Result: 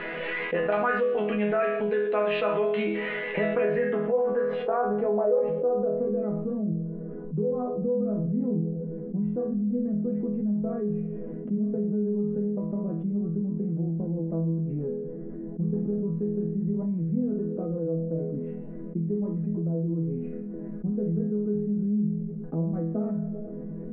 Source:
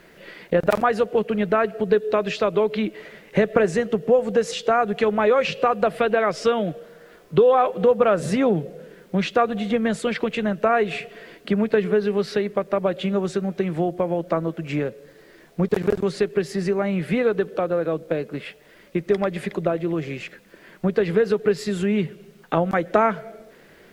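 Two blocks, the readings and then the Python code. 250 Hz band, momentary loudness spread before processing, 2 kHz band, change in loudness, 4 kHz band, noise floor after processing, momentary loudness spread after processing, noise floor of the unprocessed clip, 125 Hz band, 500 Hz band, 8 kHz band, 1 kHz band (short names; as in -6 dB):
-2.0 dB, 9 LU, -6.5 dB, -6.0 dB, under -10 dB, -36 dBFS, 8 LU, -51 dBFS, 0.0 dB, -7.0 dB, under -35 dB, -11.0 dB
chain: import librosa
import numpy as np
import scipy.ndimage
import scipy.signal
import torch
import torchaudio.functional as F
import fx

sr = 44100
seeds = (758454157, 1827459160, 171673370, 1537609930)

y = fx.bass_treble(x, sr, bass_db=-10, treble_db=2)
y = fx.filter_sweep_lowpass(y, sr, from_hz=2800.0, to_hz=200.0, start_s=3.5, end_s=6.44, q=1.7)
y = fx.air_absorb(y, sr, metres=450.0)
y = fx.resonator_bank(y, sr, root=52, chord='major', decay_s=0.49)
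y = fx.env_flatten(y, sr, amount_pct=70)
y = y * 10.0 ** (5.5 / 20.0)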